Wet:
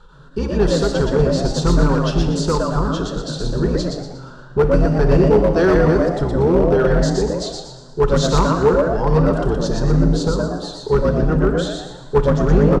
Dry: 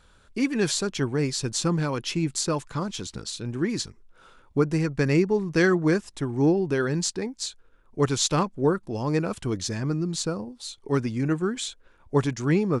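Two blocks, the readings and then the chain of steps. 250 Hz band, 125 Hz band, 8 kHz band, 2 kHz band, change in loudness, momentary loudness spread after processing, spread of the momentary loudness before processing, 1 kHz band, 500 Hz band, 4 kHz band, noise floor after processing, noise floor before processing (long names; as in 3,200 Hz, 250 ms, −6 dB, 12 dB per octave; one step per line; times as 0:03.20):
+6.5 dB, +9.0 dB, −2.0 dB, +3.5 dB, +8.5 dB, 11 LU, 10 LU, +10.0 dB, +11.0 dB, +3.0 dB, −38 dBFS, −58 dBFS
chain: sub-octave generator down 2 octaves, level +2 dB
low-pass filter 3,400 Hz 12 dB per octave
comb filter 2.2 ms, depth 33%
in parallel at −1 dB: downward compressor 5 to 1, threshold −31 dBFS, peak gain reduction 16.5 dB
on the sum: phaser with its sweep stopped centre 430 Hz, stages 8
on a send: echo with shifted repeats 119 ms, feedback 36%, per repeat +120 Hz, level −3.5 dB
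on the sum: asymmetric clip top −16 dBFS
four-comb reverb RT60 1.3 s, combs from 26 ms, DRR 8.5 dB
every ending faded ahead of time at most 200 dB per second
level +6 dB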